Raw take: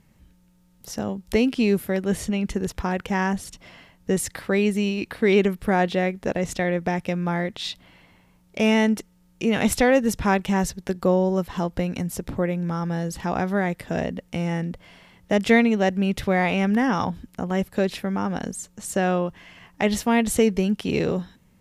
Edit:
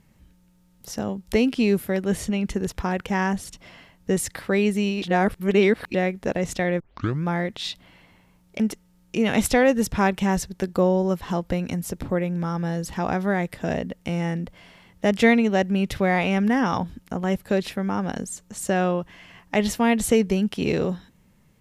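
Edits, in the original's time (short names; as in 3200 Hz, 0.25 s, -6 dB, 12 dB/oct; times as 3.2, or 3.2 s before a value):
5.02–5.94 reverse
6.8 tape start 0.44 s
8.6–8.87 cut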